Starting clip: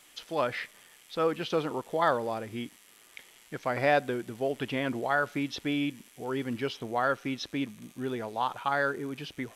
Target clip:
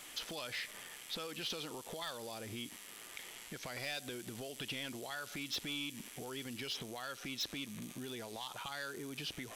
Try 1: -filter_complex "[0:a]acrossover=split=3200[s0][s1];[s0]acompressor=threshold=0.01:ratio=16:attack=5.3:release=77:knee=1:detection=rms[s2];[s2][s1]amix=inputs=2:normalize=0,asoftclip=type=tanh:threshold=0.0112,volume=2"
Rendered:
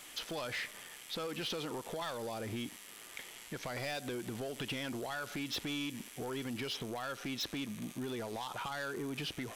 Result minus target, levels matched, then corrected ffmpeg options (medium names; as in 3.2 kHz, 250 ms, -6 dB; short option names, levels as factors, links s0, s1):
compression: peak gain reduction -7.5 dB
-filter_complex "[0:a]acrossover=split=3200[s0][s1];[s0]acompressor=threshold=0.00398:ratio=16:attack=5.3:release=77:knee=1:detection=rms[s2];[s2][s1]amix=inputs=2:normalize=0,asoftclip=type=tanh:threshold=0.0112,volume=2"